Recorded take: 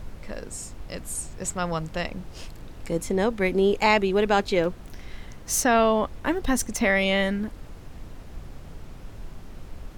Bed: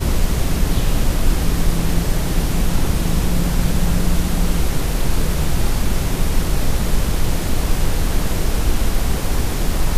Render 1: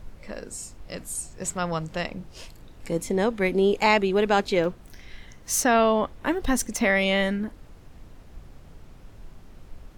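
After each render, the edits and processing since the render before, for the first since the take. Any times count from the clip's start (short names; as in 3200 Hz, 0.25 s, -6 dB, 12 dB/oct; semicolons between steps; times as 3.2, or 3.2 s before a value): noise print and reduce 6 dB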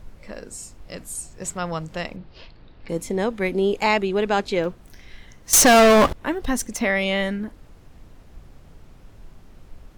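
2.16–2.89 Chebyshev low-pass 4500 Hz, order 4; 4.05–4.6 LPF 11000 Hz; 5.53–6.13 sample leveller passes 5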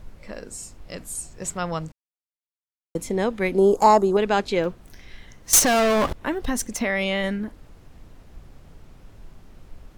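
1.92–2.95 mute; 3.58–4.17 EQ curve 120 Hz 0 dB, 1100 Hz +8 dB, 2400 Hz -20 dB, 6600 Hz +7 dB; 5.59–7.24 compressor, threshold -18 dBFS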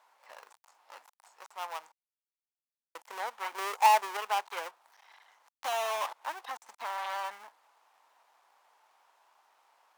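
switching dead time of 0.29 ms; ladder high-pass 790 Hz, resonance 60%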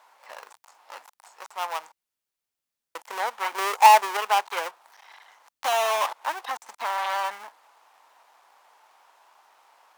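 gain +8.5 dB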